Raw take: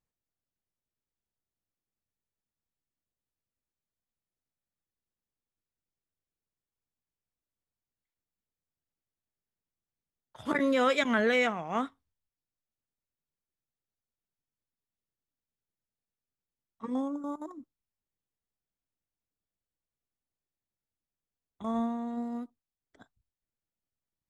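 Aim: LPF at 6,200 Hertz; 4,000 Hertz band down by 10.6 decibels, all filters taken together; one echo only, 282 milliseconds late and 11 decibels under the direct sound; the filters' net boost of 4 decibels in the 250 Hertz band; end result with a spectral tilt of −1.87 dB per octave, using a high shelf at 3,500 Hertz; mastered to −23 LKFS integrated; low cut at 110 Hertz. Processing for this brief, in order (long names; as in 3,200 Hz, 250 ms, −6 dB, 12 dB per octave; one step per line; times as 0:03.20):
high-pass filter 110 Hz
low-pass filter 6,200 Hz
parametric band 250 Hz +4.5 dB
high-shelf EQ 3,500 Hz −8 dB
parametric band 4,000 Hz −9 dB
single-tap delay 282 ms −11 dB
level +6 dB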